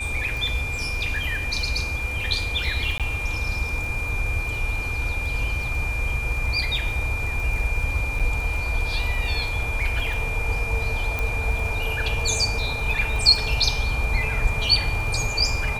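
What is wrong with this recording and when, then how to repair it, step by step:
surface crackle 20 per second −29 dBFS
whistle 2,400 Hz −28 dBFS
0:02.98–0:03.00: drop-out 17 ms
0:08.19–0:08.20: drop-out 6.7 ms
0:11.19: click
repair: click removal
notch filter 2,400 Hz, Q 30
repair the gap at 0:02.98, 17 ms
repair the gap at 0:08.19, 6.7 ms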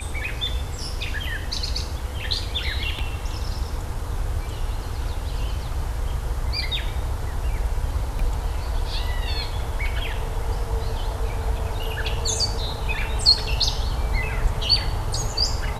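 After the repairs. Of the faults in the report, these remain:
none of them is left

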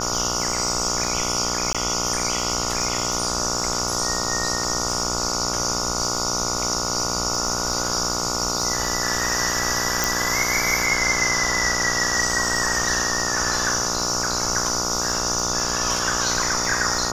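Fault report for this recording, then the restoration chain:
mains buzz 60 Hz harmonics 24 −28 dBFS
surface crackle 44 per second −29 dBFS
0:01.73–0:01.75: drop-out 16 ms
0:10.04: click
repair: click removal
hum removal 60 Hz, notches 24
repair the gap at 0:01.73, 16 ms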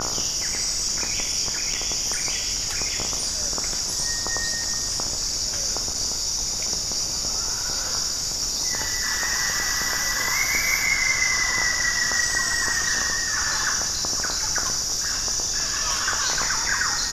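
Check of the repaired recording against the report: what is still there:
none of them is left

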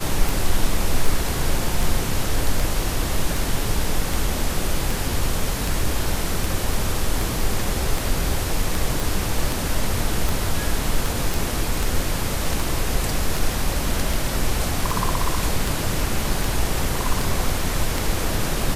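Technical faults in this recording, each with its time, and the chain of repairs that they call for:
scratch tick 78 rpm
0:09.00: click
0:11.34: click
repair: click removal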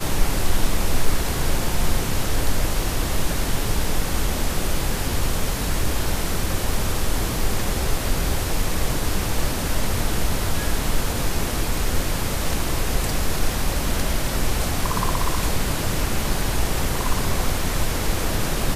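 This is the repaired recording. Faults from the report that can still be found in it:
none of them is left

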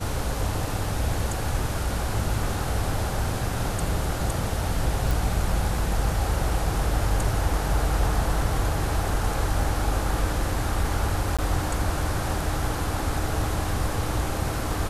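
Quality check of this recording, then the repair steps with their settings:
0:05.11: click
0:11.37–0:11.39: drop-out 16 ms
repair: click removal
repair the gap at 0:11.37, 16 ms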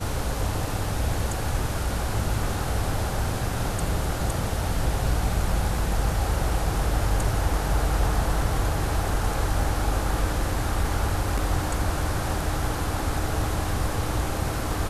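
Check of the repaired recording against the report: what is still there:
none of them is left

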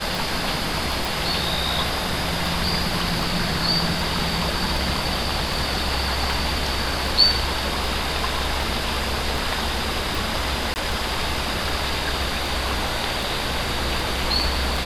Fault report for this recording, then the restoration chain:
scratch tick 78 rpm
0:01.05: click
0:10.74–0:10.76: drop-out 19 ms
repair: click removal
repair the gap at 0:10.74, 19 ms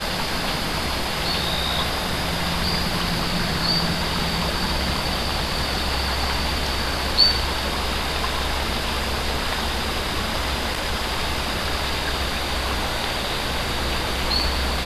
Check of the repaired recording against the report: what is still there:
none of them is left

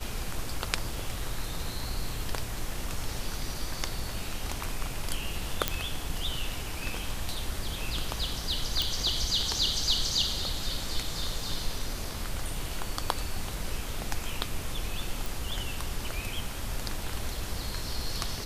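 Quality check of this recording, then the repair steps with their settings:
0:05.68: click −7 dBFS
0:08.82: click
0:15.26: click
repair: click removal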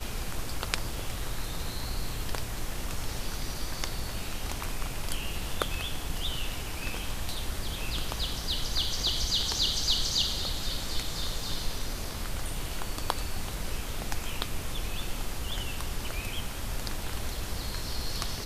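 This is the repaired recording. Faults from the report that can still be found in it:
none of them is left

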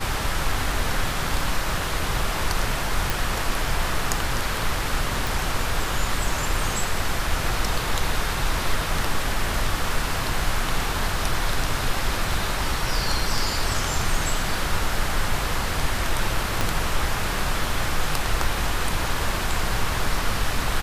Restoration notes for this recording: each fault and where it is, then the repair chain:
0:03.10: click
0:05.27: click
0:16.61: click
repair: click removal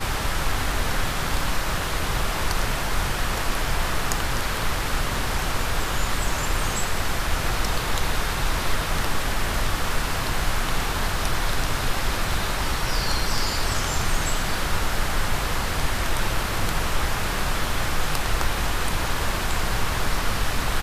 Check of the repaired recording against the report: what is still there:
0:16.61: click

